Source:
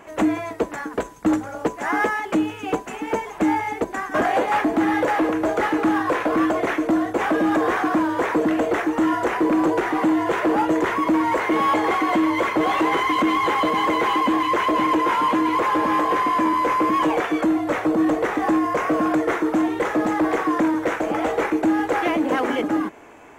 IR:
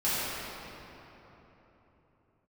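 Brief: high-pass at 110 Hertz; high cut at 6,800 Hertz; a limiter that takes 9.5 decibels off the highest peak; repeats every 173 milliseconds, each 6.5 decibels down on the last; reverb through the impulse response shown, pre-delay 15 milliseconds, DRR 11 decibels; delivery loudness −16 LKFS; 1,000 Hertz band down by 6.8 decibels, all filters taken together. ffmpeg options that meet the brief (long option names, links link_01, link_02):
-filter_complex "[0:a]highpass=110,lowpass=6800,equalizer=frequency=1000:width_type=o:gain=-8,alimiter=limit=-20dB:level=0:latency=1,aecho=1:1:173|346|519|692|865|1038:0.473|0.222|0.105|0.0491|0.0231|0.0109,asplit=2[link_01][link_02];[1:a]atrim=start_sample=2205,adelay=15[link_03];[link_02][link_03]afir=irnorm=-1:irlink=0,volume=-23dB[link_04];[link_01][link_04]amix=inputs=2:normalize=0,volume=10.5dB"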